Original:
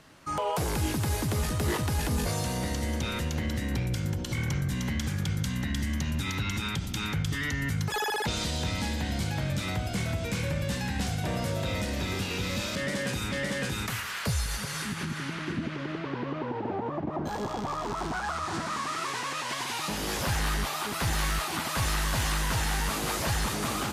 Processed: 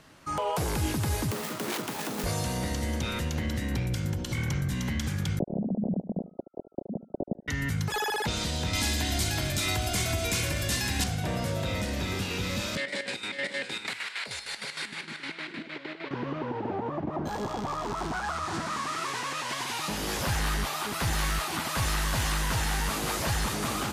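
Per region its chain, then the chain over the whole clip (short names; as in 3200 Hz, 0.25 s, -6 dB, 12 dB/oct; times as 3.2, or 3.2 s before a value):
1.31–2.24 self-modulated delay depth 0.3 ms + HPF 190 Hz 24 dB/oct + notches 50/100/150/200/250/300/350/400/450/500 Hz
5.39–7.48 sine-wave speech + steep low-pass 680 Hz 48 dB/oct + feedback echo 74 ms, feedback 33%, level -15 dB
8.73–11.04 high shelf 3400 Hz +11 dB + comb 2.9 ms, depth 51% + lo-fi delay 0.127 s, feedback 80%, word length 9-bit, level -14.5 dB
12.77–16.11 chopper 6.5 Hz, depth 65%, duty 55% + speaker cabinet 340–9100 Hz, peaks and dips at 1200 Hz -6 dB, 2200 Hz +7 dB, 4000 Hz +7 dB, 6200 Hz -8 dB
whole clip: dry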